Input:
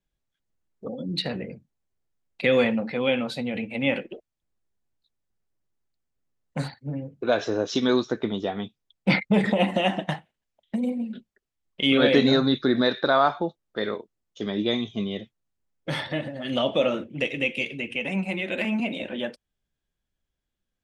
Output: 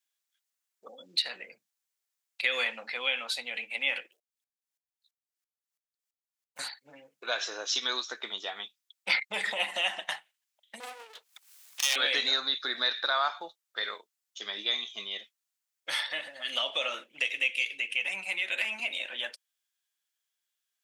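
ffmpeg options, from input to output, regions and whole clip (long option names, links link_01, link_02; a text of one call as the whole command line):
ffmpeg -i in.wav -filter_complex "[0:a]asettb=1/sr,asplit=3[link_01][link_02][link_03];[link_01]atrim=end=4.114[link_04];[link_02]atrim=start=4.11:end=6.59,asetpts=PTS-STARTPTS,afade=type=in:duration=0.004:curve=qsin,afade=type=out:start_time=2.476:duration=0.004:curve=qsin,acrusher=bits=6:mode=log:mix=0:aa=0.000001,aeval=exprs='val(0)*pow(10,-26*if(lt(mod(-3*n/s,1),2*abs(-3)/1000),1-mod(-3*n/s,1)/(2*abs(-3)/1000),(mod(-3*n/s,1)-2*abs(-3)/1000)/(1-2*abs(-3)/1000))/20)':channel_layout=same[link_05];[link_03]atrim=start=6.586[link_06];[link_04][link_05]acrossfade=duration=0.004:curve1=hsin:curve2=qsin[link_07];[link_07][link_06]acrossfade=duration=0.004:curve1=qsin:curve2=hsin,asettb=1/sr,asplit=3[link_08][link_09][link_10];[link_08]atrim=end=10.804[link_11];[link_09]atrim=start=10.8:end=11.96,asetpts=PTS-STARTPTS,afade=type=in:duration=0.004:curve=qsin,afade=type=out:start_time=1.156:duration=0.004:curve=qsin,highpass=frequency=83:poles=1,acompressor=mode=upward:threshold=-31dB:ratio=2.5:attack=3.2:release=140:knee=2.83:detection=peak,aeval=exprs='abs(val(0))':channel_layout=same[link_12];[link_10]atrim=start=11.956[link_13];[link_11][link_12]acrossfade=duration=0.004:curve1=hsin:curve2=qsin[link_14];[link_14][link_13]acrossfade=duration=0.004:curve1=qsin:curve2=hsin,highpass=1200,highshelf=frequency=3900:gain=9.5,acompressor=threshold=-29dB:ratio=1.5" out.wav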